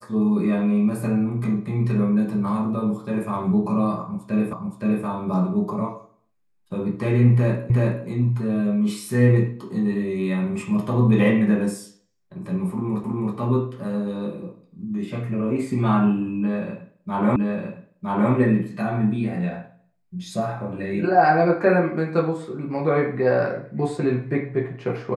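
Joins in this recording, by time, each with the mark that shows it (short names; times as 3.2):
4.53 repeat of the last 0.52 s
7.7 repeat of the last 0.37 s
13.04 repeat of the last 0.32 s
17.36 repeat of the last 0.96 s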